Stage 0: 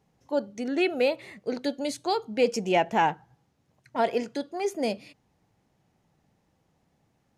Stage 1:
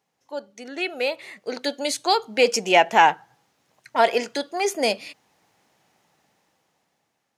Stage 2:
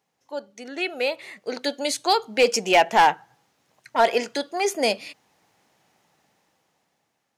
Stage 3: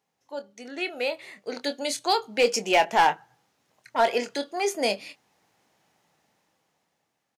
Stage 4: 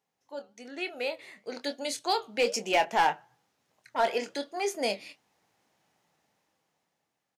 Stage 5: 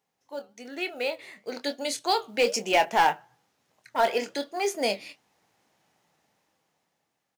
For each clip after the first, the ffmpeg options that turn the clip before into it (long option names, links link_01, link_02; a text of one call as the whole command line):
ffmpeg -i in.wav -af "highpass=frequency=1000:poles=1,dynaudnorm=framelen=420:gausssize=7:maxgain=12.5dB,volume=1dB" out.wav
ffmpeg -i in.wav -af "asoftclip=type=hard:threshold=-9.5dB" out.wav
ffmpeg -i in.wav -filter_complex "[0:a]asplit=2[link_01][link_02];[link_02]adelay=25,volume=-10.5dB[link_03];[link_01][link_03]amix=inputs=2:normalize=0,volume=-3.5dB" out.wav
ffmpeg -i in.wav -af "flanger=delay=1.3:depth=6.3:regen=-86:speed=1.1:shape=triangular" out.wav
ffmpeg -i in.wav -af "acrusher=bits=7:mode=log:mix=0:aa=0.000001,volume=3dB" out.wav